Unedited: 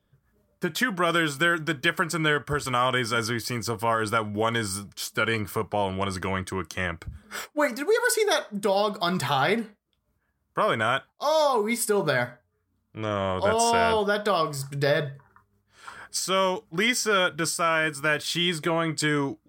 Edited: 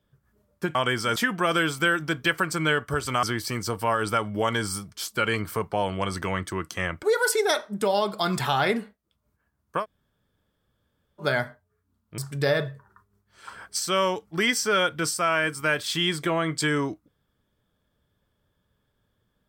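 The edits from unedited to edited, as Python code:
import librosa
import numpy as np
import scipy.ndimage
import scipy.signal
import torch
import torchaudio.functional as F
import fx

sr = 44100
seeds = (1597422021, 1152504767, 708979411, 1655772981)

y = fx.edit(x, sr, fx.move(start_s=2.82, length_s=0.41, to_s=0.75),
    fx.cut(start_s=7.03, length_s=0.82),
    fx.room_tone_fill(start_s=10.63, length_s=1.42, crossfade_s=0.1),
    fx.cut(start_s=13.0, length_s=1.58), tone=tone)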